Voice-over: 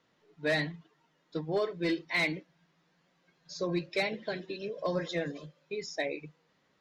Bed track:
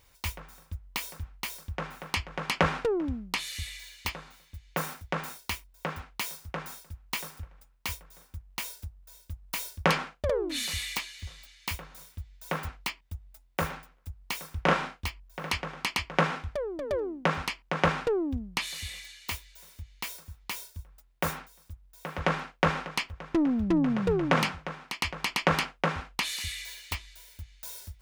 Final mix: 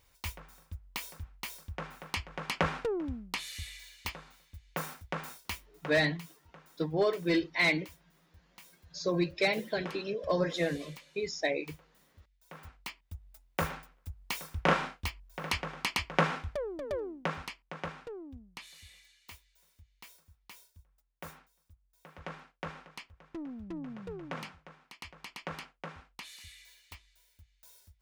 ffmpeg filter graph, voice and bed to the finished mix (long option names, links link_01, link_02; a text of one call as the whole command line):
ffmpeg -i stem1.wav -i stem2.wav -filter_complex "[0:a]adelay=5450,volume=2.5dB[link_01];[1:a]volume=12dB,afade=type=out:start_time=5.63:duration=0.59:silence=0.199526,afade=type=in:start_time=12.51:duration=0.97:silence=0.141254,afade=type=out:start_time=16.39:duration=1.51:silence=0.199526[link_02];[link_01][link_02]amix=inputs=2:normalize=0" out.wav